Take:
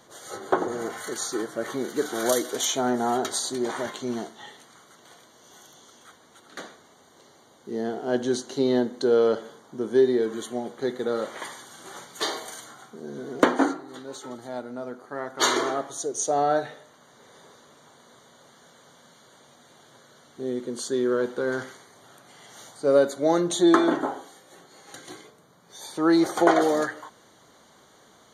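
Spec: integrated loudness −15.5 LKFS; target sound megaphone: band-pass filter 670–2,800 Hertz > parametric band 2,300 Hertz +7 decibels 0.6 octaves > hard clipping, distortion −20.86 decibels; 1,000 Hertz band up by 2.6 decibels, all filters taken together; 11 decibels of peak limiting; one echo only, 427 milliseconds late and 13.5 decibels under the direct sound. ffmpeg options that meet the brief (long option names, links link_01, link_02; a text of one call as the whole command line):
ffmpeg -i in.wav -af "equalizer=frequency=1000:width_type=o:gain=5,alimiter=limit=-12.5dB:level=0:latency=1,highpass=670,lowpass=2800,equalizer=frequency=2300:width_type=o:width=0.6:gain=7,aecho=1:1:427:0.211,asoftclip=type=hard:threshold=-19dB,volume=15.5dB" out.wav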